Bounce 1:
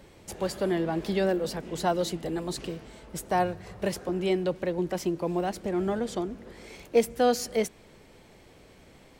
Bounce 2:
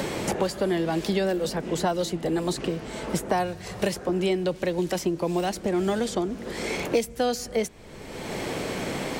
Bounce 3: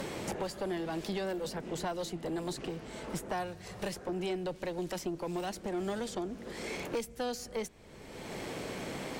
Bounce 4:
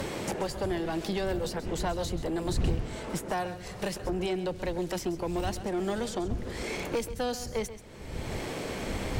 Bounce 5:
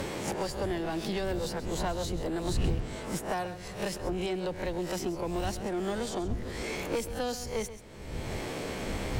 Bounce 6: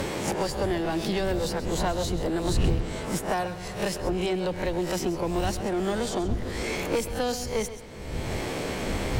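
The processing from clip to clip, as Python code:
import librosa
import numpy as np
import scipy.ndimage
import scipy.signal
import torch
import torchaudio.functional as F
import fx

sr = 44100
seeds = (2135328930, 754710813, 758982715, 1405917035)

y1 = fx.peak_eq(x, sr, hz=7000.0, db=3.0, octaves=1.4)
y1 = fx.band_squash(y1, sr, depth_pct=100)
y1 = y1 * librosa.db_to_amplitude(2.0)
y2 = fx.tube_stage(y1, sr, drive_db=20.0, bias=0.4)
y2 = y2 * librosa.db_to_amplitude(-7.5)
y3 = fx.dmg_wind(y2, sr, seeds[0], corner_hz=92.0, level_db=-42.0)
y3 = y3 + 10.0 ** (-13.5 / 20.0) * np.pad(y3, (int(133 * sr / 1000.0), 0))[:len(y3)]
y3 = y3 * librosa.db_to_amplitude(4.0)
y4 = fx.spec_swells(y3, sr, rise_s=0.34)
y4 = y4 * librosa.db_to_amplitude(-2.0)
y5 = fx.echo_bbd(y4, sr, ms=121, stages=4096, feedback_pct=69, wet_db=-17.5)
y5 = y5 * librosa.db_to_amplitude(5.0)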